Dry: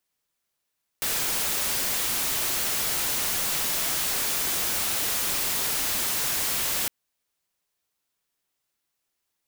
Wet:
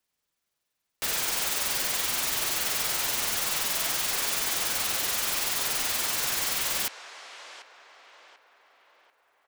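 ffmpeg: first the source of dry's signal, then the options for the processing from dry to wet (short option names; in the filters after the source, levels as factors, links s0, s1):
-f lavfi -i "anoisesrc=c=white:a=0.0819:d=5.86:r=44100:seed=1"
-filter_complex "[0:a]acrossover=split=450|7900[s0][s1][s2];[s0]alimiter=level_in=5.96:limit=0.0631:level=0:latency=1:release=432,volume=0.168[s3];[s1]asplit=2[s4][s5];[s5]adelay=740,lowpass=f=2700:p=1,volume=0.316,asplit=2[s6][s7];[s7]adelay=740,lowpass=f=2700:p=1,volume=0.5,asplit=2[s8][s9];[s9]adelay=740,lowpass=f=2700:p=1,volume=0.5,asplit=2[s10][s11];[s11]adelay=740,lowpass=f=2700:p=1,volume=0.5,asplit=2[s12][s13];[s13]adelay=740,lowpass=f=2700:p=1,volume=0.5[s14];[s4][s6][s8][s10][s12][s14]amix=inputs=6:normalize=0[s15];[s2]tremolo=f=21:d=0.71[s16];[s3][s15][s16]amix=inputs=3:normalize=0"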